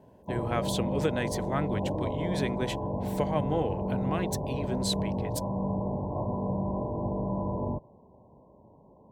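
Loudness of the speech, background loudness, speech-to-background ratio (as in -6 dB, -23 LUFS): -33.5 LUFS, -32.0 LUFS, -1.5 dB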